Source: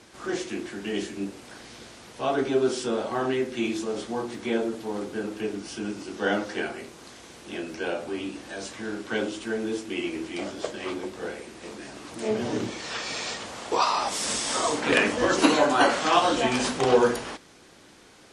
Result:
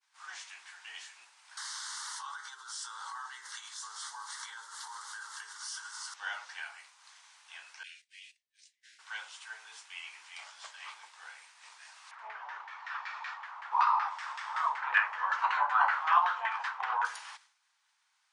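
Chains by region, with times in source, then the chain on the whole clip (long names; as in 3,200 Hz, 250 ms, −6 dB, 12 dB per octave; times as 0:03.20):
0:01.57–0:06.14: parametric band 400 Hz −14 dB 1.9 octaves + phaser with its sweep stopped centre 670 Hz, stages 6 + envelope flattener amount 100%
0:07.83–0:08.99: noise gate −35 dBFS, range −15 dB + Chebyshev band-stop filter 330–1,900 Hz, order 4
0:12.11–0:17.05: high-shelf EQ 2,600 Hz +8.5 dB + auto-filter low-pass saw down 5.3 Hz 850–1,800 Hz
whole clip: Chebyshev band-pass filter 890–9,600 Hz, order 4; downward expander −47 dBFS; level −7.5 dB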